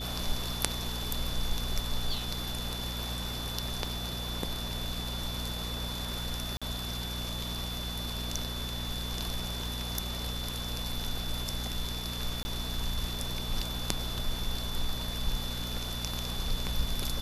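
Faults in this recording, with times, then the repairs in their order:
crackle 22/s -40 dBFS
hum 60 Hz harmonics 4 -38 dBFS
tone 3500 Hz -39 dBFS
6.57–6.62 gap 46 ms
12.43–12.45 gap 20 ms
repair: de-click; notch 3500 Hz, Q 30; de-hum 60 Hz, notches 4; interpolate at 6.57, 46 ms; interpolate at 12.43, 20 ms

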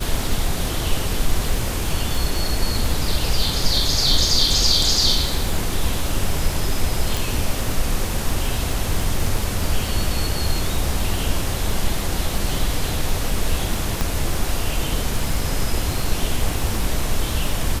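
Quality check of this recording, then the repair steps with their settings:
crackle 41/s -24 dBFS
7.17 pop
14.01 pop -7 dBFS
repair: de-click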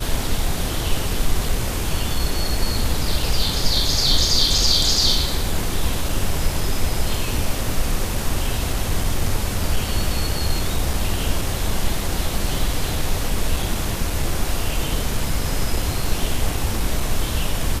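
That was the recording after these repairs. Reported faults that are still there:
14.01 pop

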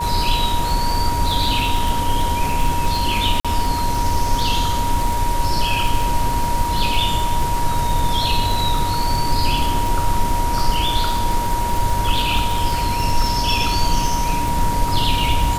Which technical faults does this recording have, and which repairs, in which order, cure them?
crackle 51/s -21 dBFS
tone 950 Hz -21 dBFS
3.4–3.45 gap 46 ms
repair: de-click; notch 950 Hz, Q 30; interpolate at 3.4, 46 ms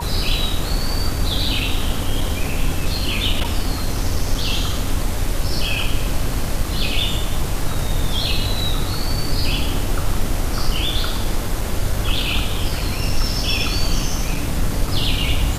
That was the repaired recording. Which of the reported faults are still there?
none

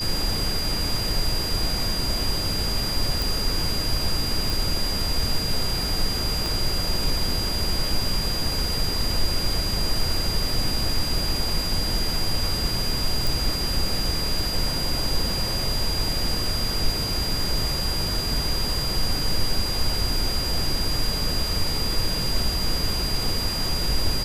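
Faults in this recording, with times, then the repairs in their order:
tone 4800 Hz -27 dBFS
3.22 pop
4.5 pop
6.46 pop
13.27 pop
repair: de-click; notch 4800 Hz, Q 30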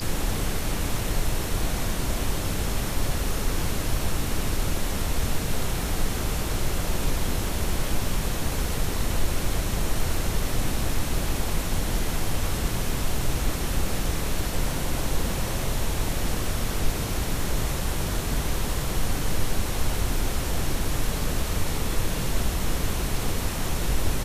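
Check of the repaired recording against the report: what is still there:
6.46 pop

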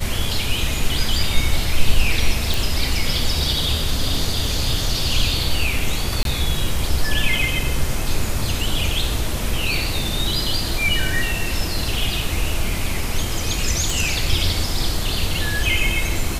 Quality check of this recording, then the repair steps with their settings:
2.54 pop
6.23–6.25 gap 22 ms
13.9 pop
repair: de-click; interpolate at 6.23, 22 ms

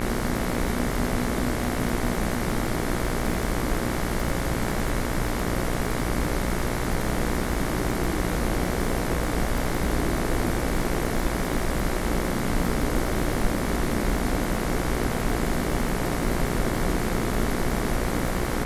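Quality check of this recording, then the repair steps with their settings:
buzz 60 Hz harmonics 38 -30 dBFS
crackle 56/s -30 dBFS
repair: de-click; de-hum 60 Hz, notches 38

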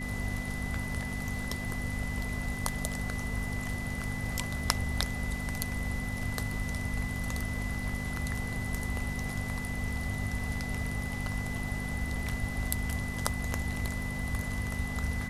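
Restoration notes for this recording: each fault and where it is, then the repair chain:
crackle 35/s -43 dBFS
hum 50 Hz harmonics 5 -38 dBFS
tone 2000 Hz -39 dBFS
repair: de-click; notch 2000 Hz, Q 30; de-hum 50 Hz, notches 5

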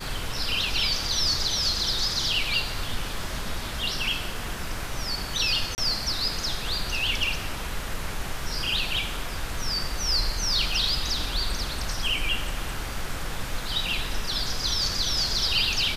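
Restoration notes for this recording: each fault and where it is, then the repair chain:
5.75–5.78 gap 29 ms
10.72 gap 3.5 ms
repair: interpolate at 5.75, 29 ms; interpolate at 10.72, 3.5 ms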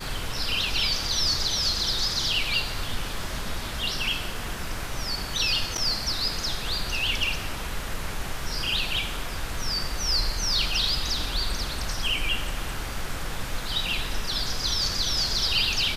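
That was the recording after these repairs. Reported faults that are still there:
none

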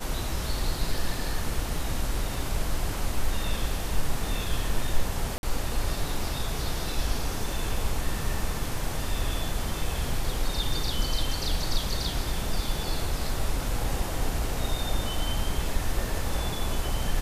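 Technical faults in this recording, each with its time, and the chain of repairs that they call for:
5.38–5.43 gap 51 ms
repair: interpolate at 5.38, 51 ms

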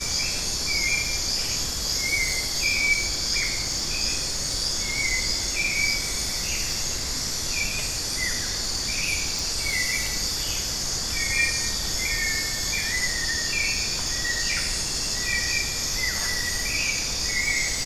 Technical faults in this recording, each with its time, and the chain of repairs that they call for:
crackle 28/s -30 dBFS
9.39 pop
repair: de-click

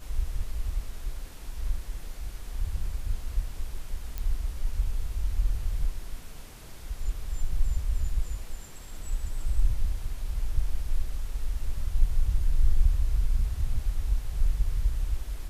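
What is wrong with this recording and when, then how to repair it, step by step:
4.18 pop -19 dBFS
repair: de-click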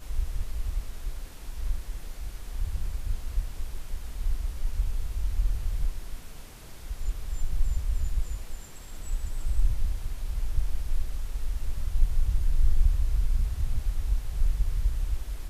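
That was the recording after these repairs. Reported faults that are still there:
none

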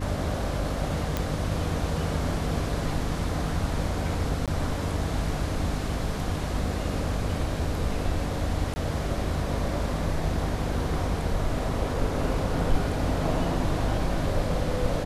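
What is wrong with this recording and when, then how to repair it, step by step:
hum 50 Hz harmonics 6 -32 dBFS
1.17 pop -12 dBFS
4.46–4.48 gap 17 ms
8.74–8.76 gap 20 ms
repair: de-click; de-hum 50 Hz, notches 6; interpolate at 4.46, 17 ms; interpolate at 8.74, 20 ms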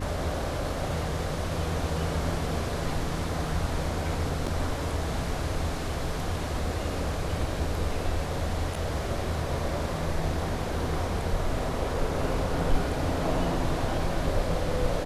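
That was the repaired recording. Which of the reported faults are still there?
none

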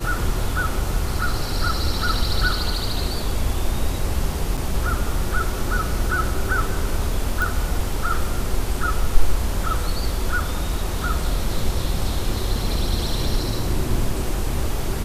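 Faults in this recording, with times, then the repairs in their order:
4.57–4.58 gap 7 ms
7.42 pop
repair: de-click; interpolate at 4.57, 7 ms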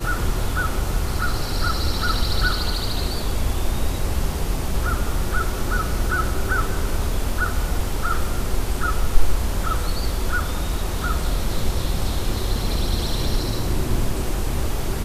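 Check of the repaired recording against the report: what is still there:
none

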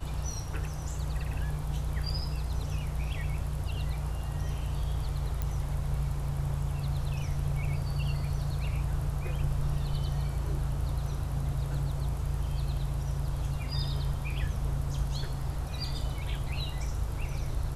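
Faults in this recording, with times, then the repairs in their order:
5.42 pop -19 dBFS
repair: de-click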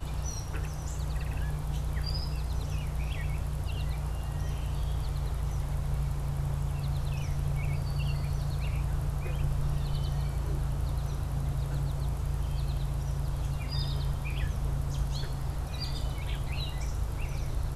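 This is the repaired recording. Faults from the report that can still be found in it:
5.42 pop

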